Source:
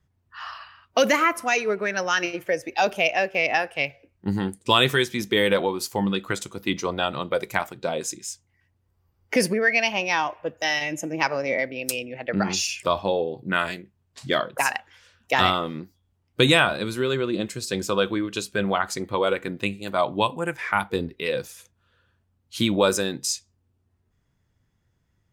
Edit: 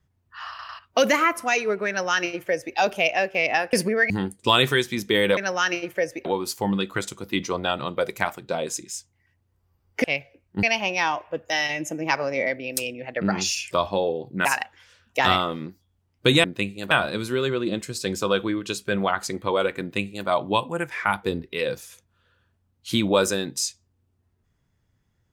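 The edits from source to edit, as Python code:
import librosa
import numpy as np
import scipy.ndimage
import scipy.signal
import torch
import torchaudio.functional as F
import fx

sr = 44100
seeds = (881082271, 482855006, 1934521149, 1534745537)

y = fx.edit(x, sr, fx.stutter_over(start_s=0.49, slice_s=0.1, count=3),
    fx.duplicate(start_s=1.88, length_s=0.88, to_s=5.59),
    fx.swap(start_s=3.73, length_s=0.59, other_s=9.38, other_length_s=0.37),
    fx.cut(start_s=13.57, length_s=1.02),
    fx.duplicate(start_s=19.48, length_s=0.47, to_s=16.58), tone=tone)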